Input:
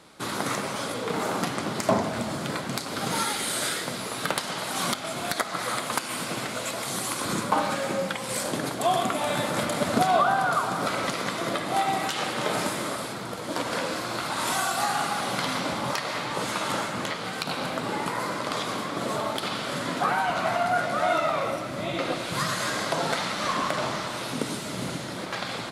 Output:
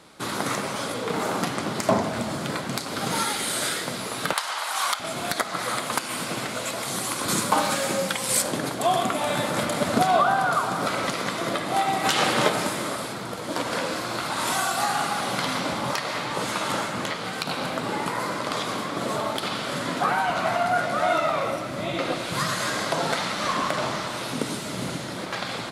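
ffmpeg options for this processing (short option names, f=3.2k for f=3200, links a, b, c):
-filter_complex "[0:a]asettb=1/sr,asplit=3[a][b][c];[a]atrim=end=4.334[d];[b]atrim=start=4.33:end=5,asetpts=PTS-STARTPTS,afade=t=in:d=0.004:c=qsin,afade=t=out:st=0.666:d=0.004:c=qsin,highpass=f=950:t=q:w=1.5[e];[c]atrim=start=4.996[f];[d][e]acrossfade=d=0.004:c1=hsin:c2=qsin[g];[g][f]acrossfade=d=0.004:c1=qsin:c2=hsin,asettb=1/sr,asplit=3[h][i][j];[h]atrim=end=7.284[k];[i]atrim=start=7.28:end=8.42,asetpts=PTS-STARTPTS,afade=t=in:d=0.004:c=qsin,afade=t=out:st=1.136:d=0.004:c=qsin,highshelf=f=4k:g=10[l];[j]atrim=start=8.416[m];[k][l]acrossfade=d=0.004:c1=hsin:c2=qsin[n];[n][m]acrossfade=d=0.004:c1=qsin:c2=hsin,asplit=3[o][p][q];[o]afade=t=out:st=12.04:d=0.02[r];[p]acontrast=44,afade=t=in:st=12.04:d=0.02,afade=t=out:st=12.48:d=0.02[s];[q]afade=t=in:st=12.48:d=0.02[t];[r][s][t]amix=inputs=3:normalize=0,volume=1.5dB"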